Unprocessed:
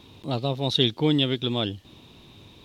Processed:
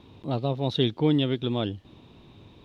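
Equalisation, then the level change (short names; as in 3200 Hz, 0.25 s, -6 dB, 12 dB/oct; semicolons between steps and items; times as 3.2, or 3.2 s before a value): high shelf 2800 Hz -11.5 dB; high shelf 7500 Hz -4.5 dB; 0.0 dB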